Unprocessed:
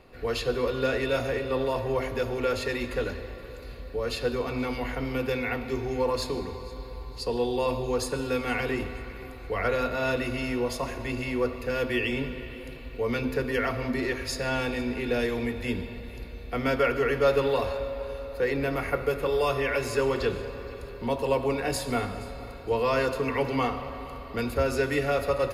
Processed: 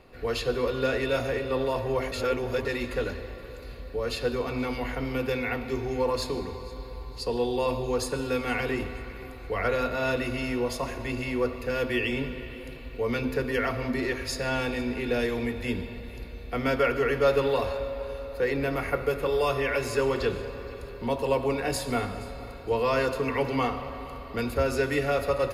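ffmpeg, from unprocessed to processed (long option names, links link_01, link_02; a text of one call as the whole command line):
ffmpeg -i in.wav -filter_complex "[0:a]asplit=3[link_01][link_02][link_03];[link_01]atrim=end=2.122[link_04];[link_02]atrim=start=2.118:end=2.652,asetpts=PTS-STARTPTS,areverse[link_05];[link_03]atrim=start=2.648[link_06];[link_04][link_05]acrossfade=duration=0.004:curve1=hsin:curve2=hsin[link_07];[link_07][link_06]acrossfade=duration=0.004:curve1=hsin:curve2=hsin" out.wav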